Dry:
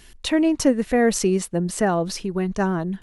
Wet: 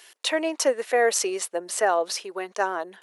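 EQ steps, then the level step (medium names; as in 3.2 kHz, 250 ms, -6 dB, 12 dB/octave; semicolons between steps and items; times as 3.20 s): high-pass 470 Hz 24 dB/octave; +1.5 dB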